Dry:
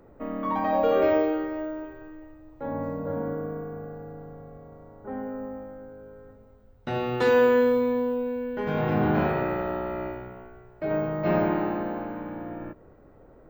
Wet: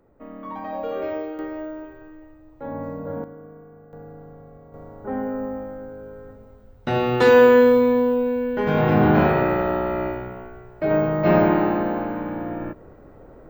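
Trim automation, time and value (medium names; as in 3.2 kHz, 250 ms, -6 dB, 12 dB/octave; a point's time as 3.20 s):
-6.5 dB
from 1.39 s 0 dB
from 3.24 s -10 dB
from 3.93 s -0.5 dB
from 4.74 s +7 dB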